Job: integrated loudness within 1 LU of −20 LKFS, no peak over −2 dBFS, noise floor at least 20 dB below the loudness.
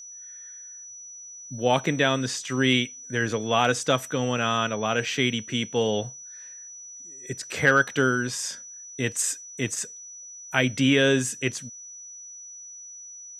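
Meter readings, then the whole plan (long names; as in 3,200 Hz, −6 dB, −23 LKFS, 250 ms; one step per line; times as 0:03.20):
interfering tone 5,900 Hz; level of the tone −40 dBFS; integrated loudness −24.5 LKFS; sample peak −7.0 dBFS; target loudness −20.0 LKFS
→ notch filter 5,900 Hz, Q 30
level +4.5 dB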